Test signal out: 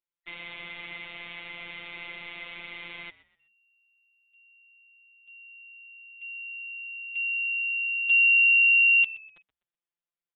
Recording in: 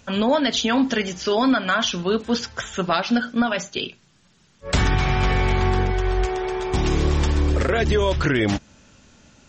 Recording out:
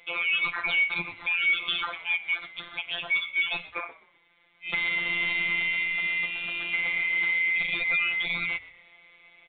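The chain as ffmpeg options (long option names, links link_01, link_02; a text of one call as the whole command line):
ffmpeg -i in.wav -filter_complex "[0:a]afftfilt=real='real(if(lt(b,920),b+92*(1-2*mod(floor(b/92),2)),b),0)':imag='imag(if(lt(b,920),b+92*(1-2*mod(floor(b/92),2)),b),0)':win_size=2048:overlap=0.75,alimiter=limit=-15.5dB:level=0:latency=1:release=353,afftfilt=real='hypot(re,im)*cos(PI*b)':imag='0':win_size=1024:overlap=0.75,asplit=2[link_01][link_02];[link_02]asplit=3[link_03][link_04][link_05];[link_03]adelay=125,afreqshift=-68,volume=-19dB[link_06];[link_04]adelay=250,afreqshift=-136,volume=-28.9dB[link_07];[link_05]adelay=375,afreqshift=-204,volume=-38.8dB[link_08];[link_06][link_07][link_08]amix=inputs=3:normalize=0[link_09];[link_01][link_09]amix=inputs=2:normalize=0,aresample=8000,aresample=44100" out.wav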